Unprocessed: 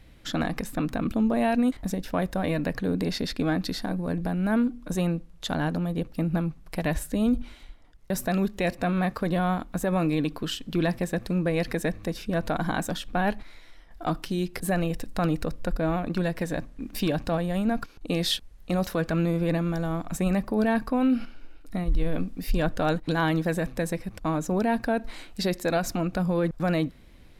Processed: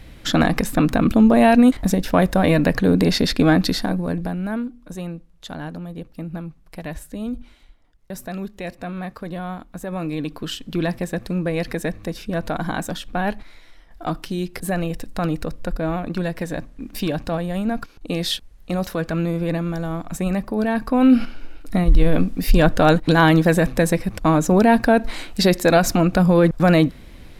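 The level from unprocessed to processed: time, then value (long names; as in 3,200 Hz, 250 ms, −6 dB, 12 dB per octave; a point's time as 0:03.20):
0:03.64 +10.5 dB
0:04.30 +2.5 dB
0:04.71 −4.5 dB
0:09.75 −4.5 dB
0:10.53 +2.5 dB
0:20.74 +2.5 dB
0:21.14 +10.5 dB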